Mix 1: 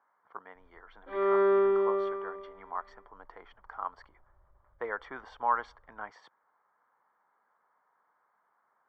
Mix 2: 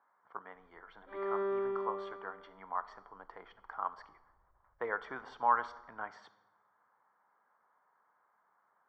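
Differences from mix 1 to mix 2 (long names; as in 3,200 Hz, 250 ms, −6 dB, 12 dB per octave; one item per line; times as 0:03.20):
background −9.0 dB
reverb: on, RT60 1.1 s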